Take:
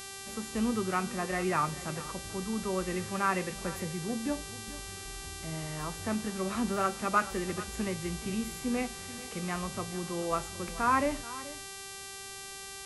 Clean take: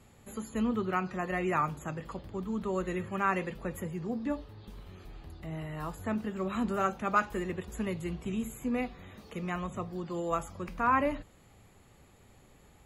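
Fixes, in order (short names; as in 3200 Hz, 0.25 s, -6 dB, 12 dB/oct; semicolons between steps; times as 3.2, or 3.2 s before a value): de-hum 391.5 Hz, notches 29; inverse comb 0.432 s -16.5 dB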